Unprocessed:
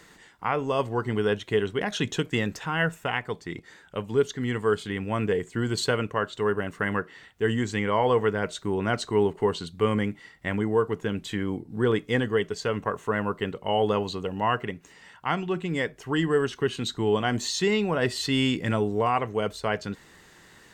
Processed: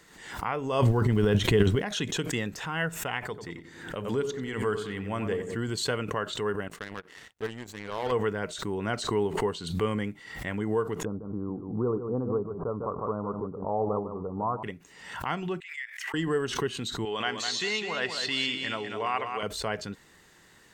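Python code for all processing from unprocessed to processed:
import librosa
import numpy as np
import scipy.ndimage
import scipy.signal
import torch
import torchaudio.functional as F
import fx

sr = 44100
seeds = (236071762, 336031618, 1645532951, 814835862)

y = fx.transient(x, sr, attack_db=2, sustain_db=12, at=(0.81, 1.8), fade=0.02)
y = fx.low_shelf(y, sr, hz=250.0, db=11.5, at=(0.81, 1.8), fade=0.02)
y = fx.dmg_crackle(y, sr, seeds[0], per_s=560.0, level_db=-44.0, at=(0.81, 1.8), fade=0.02)
y = fx.chain(y, sr, fx.hum_notches(base_hz=60, count=7),
    fx.echo_filtered(ms=92, feedback_pct=53, hz=2000.0, wet_db=-8.5), at=(3.21, 5.57))
y = fx.chain(y, sr, fx.peak_eq(hz=460.0, db=3.5, octaves=0.26),
    fx.power_curve(exponent=2.0),
    fx.overload_stage(gain_db=18.0), at=(6.68, 8.12))
y = fx.chain(y, sr, fx.steep_lowpass(hz=1300.0, slope=96),
    fx.echo_single(ms=151, db=-10.5), at=(11.05, 14.63))
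y = fx.chain(y, sr, fx.level_steps(step_db=9),
    fx.ladder_highpass(hz=1800.0, resonance_pct=70), at=(15.6, 16.14))
y = fx.chain(y, sr, fx.lowpass(hz=3100.0, slope=12),
    fx.tilt_eq(slope=4.5),
    fx.echo_feedback(ms=200, feedback_pct=27, wet_db=-6.5), at=(17.05, 19.43))
y = fx.high_shelf(y, sr, hz=6100.0, db=3.5)
y = fx.pre_swell(y, sr, db_per_s=69.0)
y = y * 10.0 ** (-5.0 / 20.0)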